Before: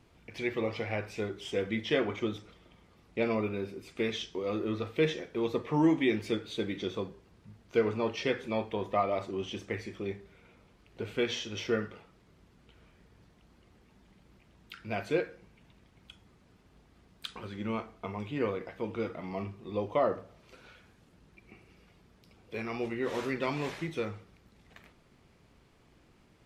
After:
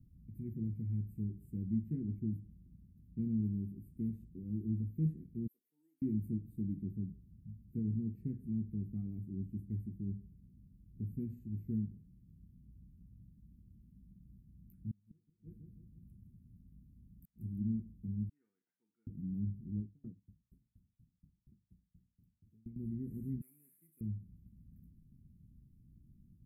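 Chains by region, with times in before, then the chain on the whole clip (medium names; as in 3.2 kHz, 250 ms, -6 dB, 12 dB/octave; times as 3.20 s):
5.47–6.02 s: high-pass 860 Hz 24 dB/octave + peaking EQ 1.2 kHz -12 dB 2.6 oct
14.75–17.61 s: feedback delay 162 ms, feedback 47%, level -7 dB + inverted gate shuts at -26 dBFS, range -35 dB
18.29–19.07 s: Butterworth band-pass 1.2 kHz, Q 1.4 + tilt EQ +4.5 dB/octave
19.80–22.76 s: hum notches 50/100/150/200/250/300 Hz + sawtooth tremolo in dB decaying 4.2 Hz, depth 35 dB
23.41–24.01 s: CVSD coder 64 kbps + high-pass 1.3 kHz
whole clip: inverse Chebyshev band-stop 540–6100 Hz, stop band 50 dB; tone controls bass +3 dB, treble -4 dB; trim +1.5 dB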